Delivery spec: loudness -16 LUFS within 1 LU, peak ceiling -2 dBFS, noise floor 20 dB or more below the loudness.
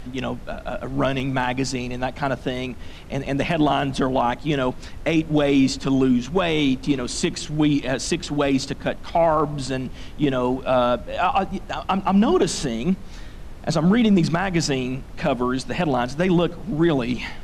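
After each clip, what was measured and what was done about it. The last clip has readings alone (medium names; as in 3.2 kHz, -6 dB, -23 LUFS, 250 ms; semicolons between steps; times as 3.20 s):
dropouts 1; longest dropout 1.7 ms; noise floor -37 dBFS; noise floor target -42 dBFS; loudness -22.0 LUFS; peak level -9.0 dBFS; loudness target -16.0 LUFS
-> interpolate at 1.20 s, 1.7 ms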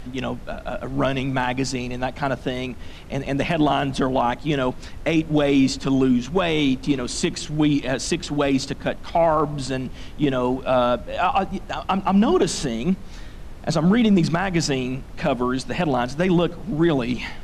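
dropouts 0; noise floor -37 dBFS; noise floor target -42 dBFS
-> noise print and reduce 6 dB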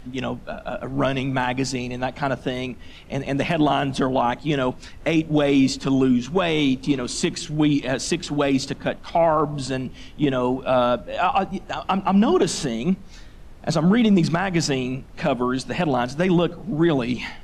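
noise floor -42 dBFS; noise floor target -43 dBFS
-> noise print and reduce 6 dB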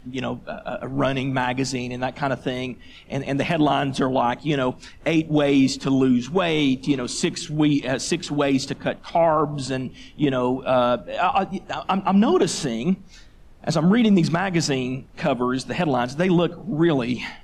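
noise floor -46 dBFS; loudness -22.5 LUFS; peak level -9.5 dBFS; loudness target -16.0 LUFS
-> trim +6.5 dB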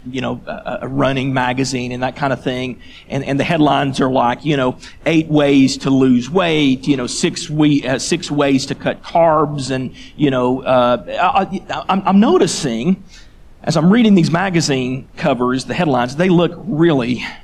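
loudness -16.0 LUFS; peak level -3.0 dBFS; noise floor -39 dBFS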